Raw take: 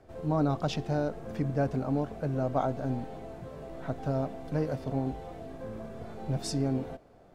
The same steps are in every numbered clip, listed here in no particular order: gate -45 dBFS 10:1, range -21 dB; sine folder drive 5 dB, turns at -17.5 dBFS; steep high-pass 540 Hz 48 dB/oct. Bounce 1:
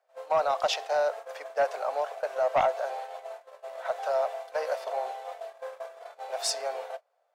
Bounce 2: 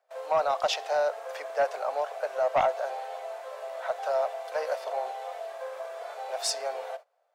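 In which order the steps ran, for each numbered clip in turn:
steep high-pass > gate > sine folder; gate > steep high-pass > sine folder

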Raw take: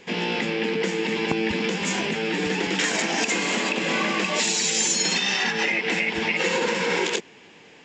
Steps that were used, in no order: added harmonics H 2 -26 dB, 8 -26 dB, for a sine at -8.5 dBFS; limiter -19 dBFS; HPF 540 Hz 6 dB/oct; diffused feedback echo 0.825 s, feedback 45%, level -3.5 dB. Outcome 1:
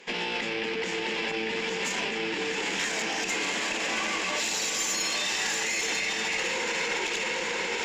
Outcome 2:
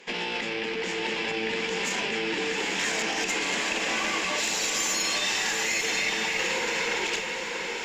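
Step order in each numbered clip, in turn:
diffused feedback echo > limiter > HPF > added harmonics; limiter > HPF > added harmonics > diffused feedback echo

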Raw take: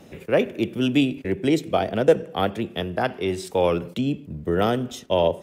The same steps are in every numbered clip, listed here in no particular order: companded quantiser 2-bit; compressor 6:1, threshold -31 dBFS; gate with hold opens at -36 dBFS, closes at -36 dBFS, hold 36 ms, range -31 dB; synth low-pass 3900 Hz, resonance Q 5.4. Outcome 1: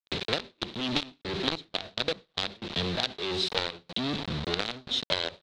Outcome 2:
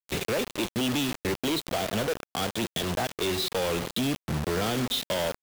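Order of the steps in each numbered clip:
companded quantiser > compressor > gate with hold > synth low-pass; synth low-pass > compressor > gate with hold > companded quantiser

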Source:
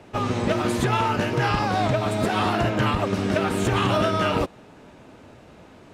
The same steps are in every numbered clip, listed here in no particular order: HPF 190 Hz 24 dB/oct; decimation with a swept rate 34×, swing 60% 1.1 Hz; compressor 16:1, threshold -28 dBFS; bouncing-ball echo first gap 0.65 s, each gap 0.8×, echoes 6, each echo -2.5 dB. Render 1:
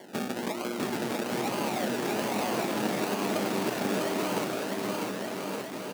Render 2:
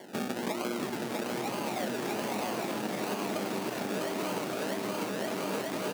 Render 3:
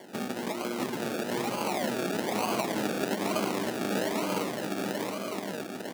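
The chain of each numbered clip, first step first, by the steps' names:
decimation with a swept rate > HPF > compressor > bouncing-ball echo; decimation with a swept rate > bouncing-ball echo > compressor > HPF; compressor > bouncing-ball echo > decimation with a swept rate > HPF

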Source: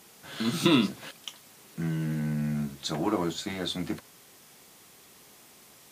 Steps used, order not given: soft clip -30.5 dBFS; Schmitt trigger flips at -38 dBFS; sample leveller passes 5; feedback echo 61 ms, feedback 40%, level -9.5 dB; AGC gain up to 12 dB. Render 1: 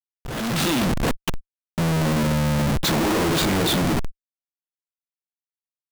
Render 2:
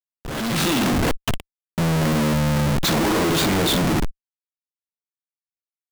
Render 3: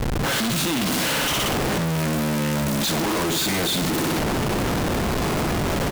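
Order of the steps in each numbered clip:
soft clip > feedback echo > Schmitt trigger > sample leveller > AGC; feedback echo > Schmitt trigger > sample leveller > soft clip > AGC; sample leveller > feedback echo > soft clip > AGC > Schmitt trigger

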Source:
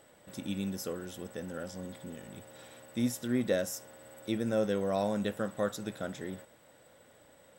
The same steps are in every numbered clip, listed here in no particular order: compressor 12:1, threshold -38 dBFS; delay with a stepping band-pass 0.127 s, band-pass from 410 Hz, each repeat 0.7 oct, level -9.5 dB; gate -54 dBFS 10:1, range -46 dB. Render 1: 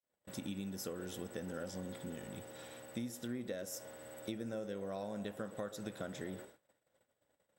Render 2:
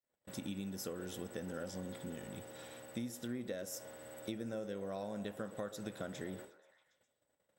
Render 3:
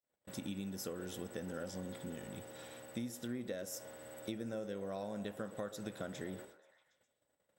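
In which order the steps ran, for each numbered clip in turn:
compressor > delay with a stepping band-pass > gate; compressor > gate > delay with a stepping band-pass; gate > compressor > delay with a stepping band-pass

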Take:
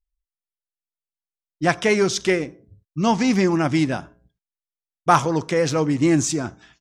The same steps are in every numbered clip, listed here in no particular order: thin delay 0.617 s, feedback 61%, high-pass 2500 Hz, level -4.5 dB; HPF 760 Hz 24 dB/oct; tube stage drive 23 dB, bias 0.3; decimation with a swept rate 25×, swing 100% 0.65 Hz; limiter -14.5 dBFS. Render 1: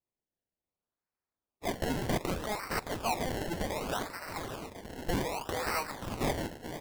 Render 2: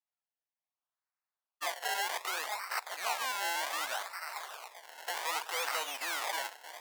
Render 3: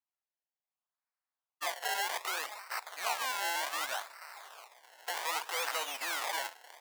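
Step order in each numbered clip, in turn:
thin delay > limiter > HPF > tube stage > decimation with a swept rate; thin delay > limiter > decimation with a swept rate > tube stage > HPF; limiter > tube stage > thin delay > decimation with a swept rate > HPF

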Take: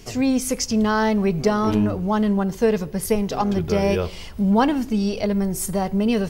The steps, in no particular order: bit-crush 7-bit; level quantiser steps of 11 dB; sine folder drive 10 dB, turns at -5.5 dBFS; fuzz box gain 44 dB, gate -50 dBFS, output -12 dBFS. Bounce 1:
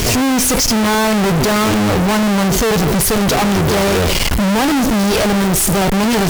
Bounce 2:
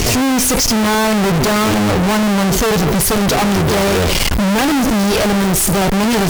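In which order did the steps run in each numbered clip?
level quantiser > sine folder > bit-crush > fuzz box; sine folder > level quantiser > fuzz box > bit-crush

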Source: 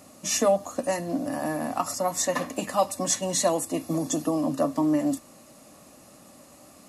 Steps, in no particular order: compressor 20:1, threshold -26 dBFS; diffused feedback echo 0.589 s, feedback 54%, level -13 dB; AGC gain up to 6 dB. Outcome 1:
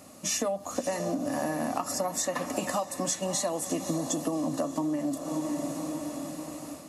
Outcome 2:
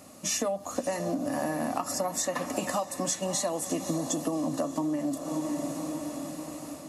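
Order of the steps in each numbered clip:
diffused feedback echo > AGC > compressor; AGC > diffused feedback echo > compressor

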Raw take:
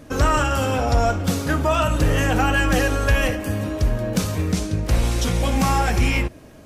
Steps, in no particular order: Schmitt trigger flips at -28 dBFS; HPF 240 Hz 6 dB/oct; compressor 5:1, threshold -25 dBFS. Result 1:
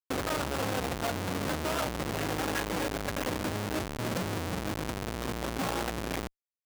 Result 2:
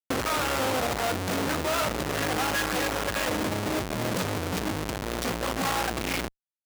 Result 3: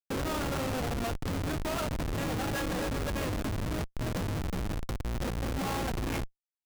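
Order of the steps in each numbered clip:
compressor > Schmitt trigger > HPF; Schmitt trigger > compressor > HPF; compressor > HPF > Schmitt trigger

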